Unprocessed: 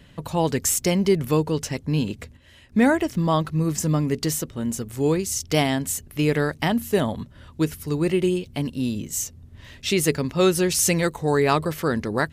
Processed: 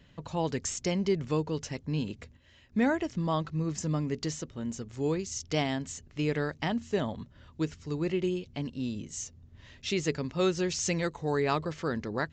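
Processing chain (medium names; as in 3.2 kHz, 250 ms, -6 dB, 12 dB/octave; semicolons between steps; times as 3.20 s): resampled via 16 kHz; trim -8.5 dB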